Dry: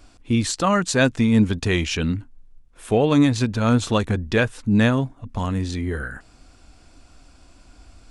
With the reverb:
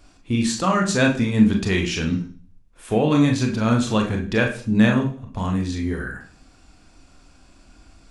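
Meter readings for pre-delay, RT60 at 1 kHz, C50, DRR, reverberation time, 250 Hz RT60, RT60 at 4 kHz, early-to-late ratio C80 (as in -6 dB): 27 ms, 0.40 s, 8.5 dB, 1.0 dB, 0.40 s, 0.55 s, 0.55 s, 13.5 dB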